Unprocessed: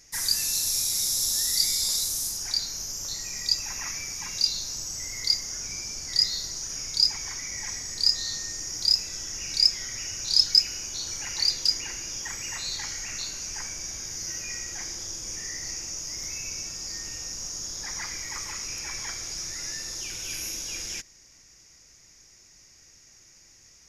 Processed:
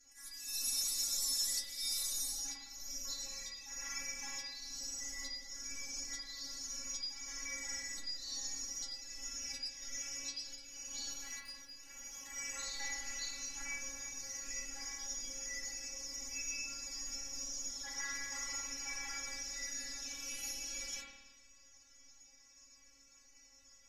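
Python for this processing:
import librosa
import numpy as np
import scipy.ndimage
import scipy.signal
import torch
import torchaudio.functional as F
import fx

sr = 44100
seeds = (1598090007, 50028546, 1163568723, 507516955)

y = fx.spec_quant(x, sr, step_db=15)
y = fx.tube_stage(y, sr, drive_db=23.0, bias=0.8, at=(11.11, 12.36))
y = fx.auto_swell(y, sr, attack_ms=391.0)
y = fx.stiff_resonator(y, sr, f0_hz=270.0, decay_s=0.29, stiffness=0.002)
y = fx.rev_spring(y, sr, rt60_s=1.2, pass_ms=(54,), chirp_ms=50, drr_db=-1.0)
y = F.gain(torch.from_numpy(y), 4.5).numpy()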